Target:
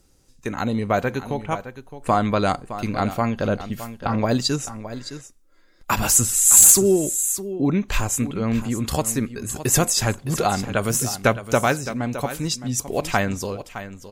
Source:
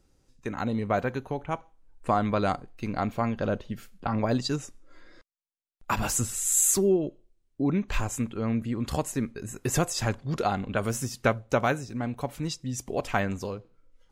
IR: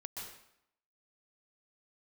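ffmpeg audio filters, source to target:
-af "aemphasis=mode=production:type=cd,aecho=1:1:614:0.237,aeval=exprs='0.376*(abs(mod(val(0)/0.376+3,4)-2)-1)':channel_layout=same,volume=5.5dB"

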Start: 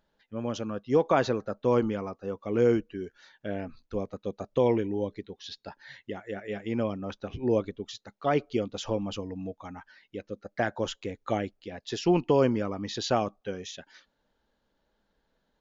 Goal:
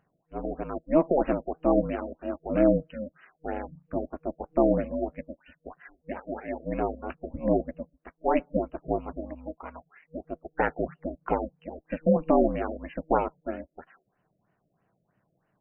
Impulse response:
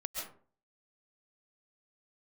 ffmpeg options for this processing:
-af "afftfilt=real='re*(1-between(b*sr/4096,160,320))':imag='im*(1-between(b*sr/4096,160,320))':win_size=4096:overlap=0.75,aeval=exprs='val(0)*sin(2*PI*160*n/s)':channel_layout=same,afftfilt=real='re*lt(b*sr/1024,660*pow(3100/660,0.5+0.5*sin(2*PI*3.1*pts/sr)))':imag='im*lt(b*sr/1024,660*pow(3100/660,0.5+0.5*sin(2*PI*3.1*pts/sr)))':win_size=1024:overlap=0.75,volume=5.5dB"

